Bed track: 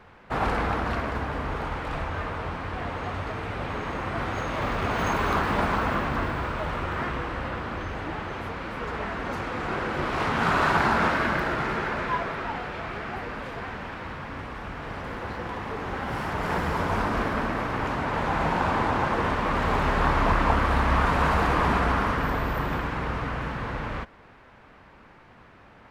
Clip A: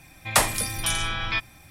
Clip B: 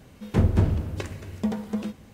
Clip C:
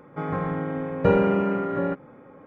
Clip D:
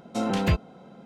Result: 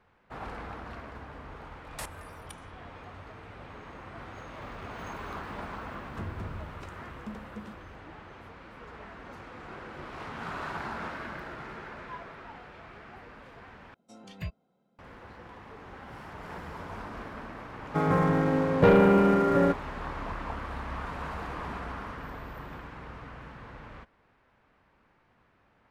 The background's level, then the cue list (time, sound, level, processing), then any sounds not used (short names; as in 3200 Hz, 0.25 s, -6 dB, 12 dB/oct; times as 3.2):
bed track -14.5 dB
1.63 add A -14.5 dB + level quantiser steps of 23 dB
5.83 add B -15 dB + limiter -14.5 dBFS
13.94 replace with D -13.5 dB + spectral noise reduction 11 dB
17.78 add C -4 dB + sample leveller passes 2